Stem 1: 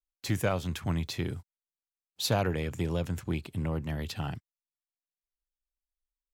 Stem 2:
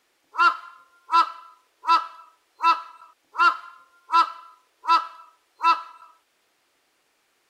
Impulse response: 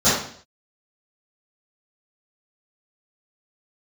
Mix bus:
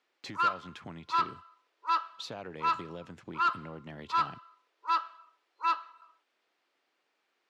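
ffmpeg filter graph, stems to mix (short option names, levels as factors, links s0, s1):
-filter_complex "[0:a]acompressor=threshold=0.0158:ratio=5,volume=0.891[s0];[1:a]volume=0.355[s1];[s0][s1]amix=inputs=2:normalize=0,volume=10.6,asoftclip=hard,volume=0.0944,highpass=210,lowpass=4500"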